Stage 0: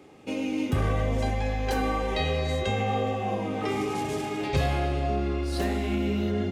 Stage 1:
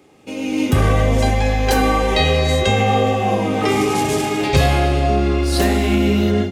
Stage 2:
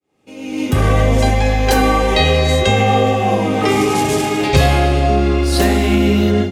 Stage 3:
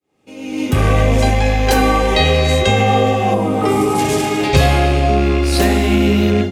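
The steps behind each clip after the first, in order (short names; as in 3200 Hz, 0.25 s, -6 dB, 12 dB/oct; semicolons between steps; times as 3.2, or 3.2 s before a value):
high shelf 4600 Hz +6.5 dB; AGC gain up to 11.5 dB
opening faded in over 0.98 s; gain +2.5 dB
rattling part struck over -13 dBFS, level -17 dBFS; spectral gain 3.34–3.99, 1500–7400 Hz -7 dB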